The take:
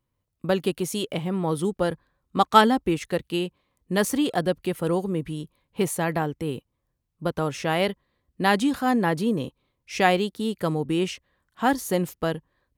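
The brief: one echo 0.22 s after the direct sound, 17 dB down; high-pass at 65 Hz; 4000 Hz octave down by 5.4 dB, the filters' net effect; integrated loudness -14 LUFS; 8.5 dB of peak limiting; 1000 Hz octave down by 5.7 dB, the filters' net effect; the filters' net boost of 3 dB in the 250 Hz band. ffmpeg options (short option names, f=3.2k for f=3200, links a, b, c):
-af "highpass=65,equalizer=f=250:t=o:g=4.5,equalizer=f=1k:t=o:g=-8,equalizer=f=4k:t=o:g=-7,alimiter=limit=-15dB:level=0:latency=1,aecho=1:1:220:0.141,volume=12.5dB"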